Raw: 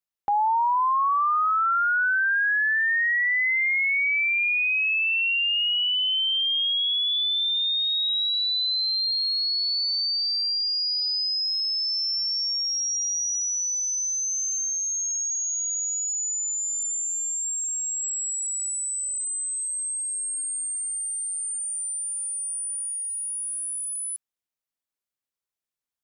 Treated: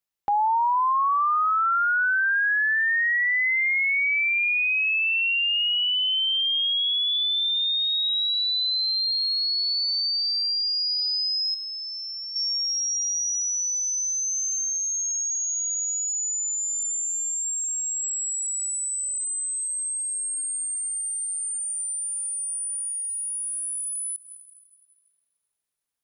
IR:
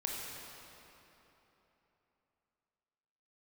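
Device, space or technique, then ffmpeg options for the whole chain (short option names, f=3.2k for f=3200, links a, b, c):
ducked reverb: -filter_complex "[0:a]asplit=3[a][b][c];[1:a]atrim=start_sample=2205[d];[b][d]afir=irnorm=-1:irlink=0[e];[c]apad=whole_len=1148261[f];[e][f]sidechaincompress=threshold=-43dB:ratio=16:attack=16:release=115,volume=-7dB[g];[a][g]amix=inputs=2:normalize=0,asettb=1/sr,asplit=3[h][i][j];[h]atrim=end=11.544[k];[i]atrim=start=11.54:end=12.36,asetpts=PTS-STARTPTS,afade=t=in:d=0.004:c=qsin,afade=t=out:st=0.816:d=0.004:c=qsin,equalizer=f=7.2k:w=1.2:g=-14.5[l];[j]atrim=start=12.356[m];[k][l]acrossfade=d=0.004:c1=hsin:c2=qsin[n];[n][m]acrossfade=d=0.004:c1=qsin:c2=hsin"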